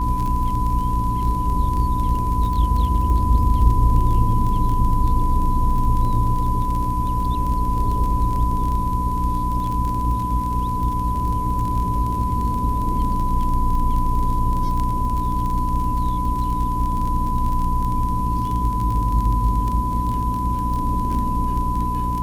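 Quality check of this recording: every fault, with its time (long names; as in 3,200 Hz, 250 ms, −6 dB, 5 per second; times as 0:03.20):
surface crackle 27 per second −24 dBFS
mains hum 60 Hz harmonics 5 −25 dBFS
whistle 1,000 Hz −23 dBFS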